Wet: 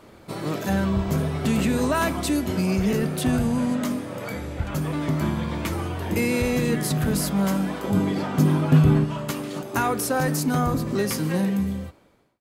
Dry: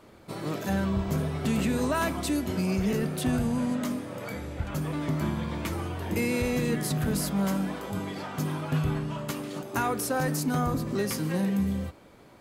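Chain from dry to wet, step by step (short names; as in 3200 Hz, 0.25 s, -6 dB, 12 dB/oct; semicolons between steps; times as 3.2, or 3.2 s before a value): ending faded out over 1.02 s; 7.84–9.05 bell 220 Hz +8.5 dB 2.4 oct; gain +4.5 dB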